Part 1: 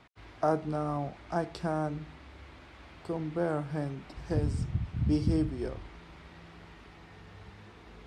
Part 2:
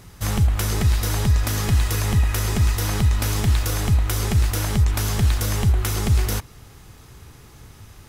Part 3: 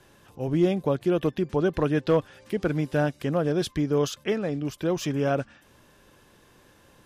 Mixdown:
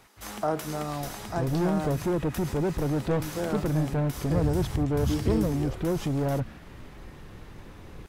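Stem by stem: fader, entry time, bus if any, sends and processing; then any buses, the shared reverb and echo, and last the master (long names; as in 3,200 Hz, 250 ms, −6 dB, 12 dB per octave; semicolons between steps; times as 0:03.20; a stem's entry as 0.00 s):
+0.5 dB, 0.00 s, no bus, no send, low-shelf EQ 110 Hz +11.5 dB
−9.0 dB, 0.00 s, bus A, no send, speech leveller within 3 dB; Chebyshev high-pass with heavy ripple 200 Hz, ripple 3 dB
+1.0 dB, 1.00 s, bus A, no send, spectral tilt −4 dB per octave; soft clipping −19 dBFS, distortion −8 dB; low-shelf EQ 440 Hz +6.5 dB
bus A: 0.0 dB, brickwall limiter −18 dBFS, peak gain reduction 7.5 dB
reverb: not used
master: low-shelf EQ 290 Hz −6.5 dB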